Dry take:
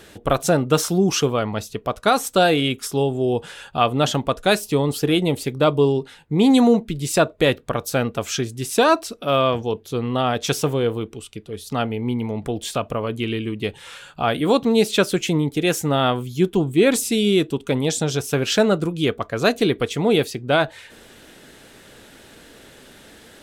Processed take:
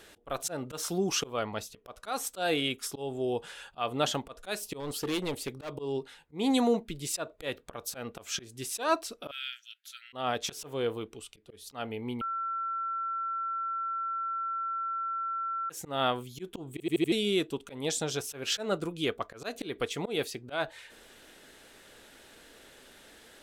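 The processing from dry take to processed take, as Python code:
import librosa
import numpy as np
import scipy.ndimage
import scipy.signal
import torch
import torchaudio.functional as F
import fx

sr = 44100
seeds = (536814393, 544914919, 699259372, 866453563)

y = fx.clip_hard(x, sr, threshold_db=-17.5, at=(4.8, 5.78))
y = fx.brickwall_highpass(y, sr, low_hz=1300.0, at=(9.31, 10.13))
y = fx.edit(y, sr, fx.bleep(start_s=12.21, length_s=3.49, hz=1350.0, db=-23.0),
    fx.stutter_over(start_s=16.72, slice_s=0.08, count=5), tone=tone)
y = fx.auto_swell(y, sr, attack_ms=170.0)
y = fx.peak_eq(y, sr, hz=130.0, db=-8.5, octaves=2.4)
y = y * 10.0 ** (-7.0 / 20.0)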